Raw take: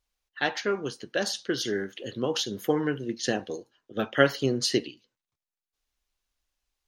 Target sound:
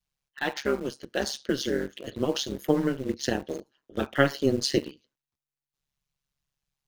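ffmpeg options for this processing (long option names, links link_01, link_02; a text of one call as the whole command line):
ffmpeg -i in.wav -filter_complex "[0:a]adynamicequalizer=threshold=0.0112:dfrequency=310:dqfactor=1.6:tfrequency=310:tqfactor=1.6:attack=5:release=100:ratio=0.375:range=2.5:mode=boostabove:tftype=bell,tremolo=f=140:d=0.857,asplit=2[link_01][link_02];[link_02]acrusher=bits=5:mix=0:aa=0.000001,volume=-11dB[link_03];[link_01][link_03]amix=inputs=2:normalize=0" out.wav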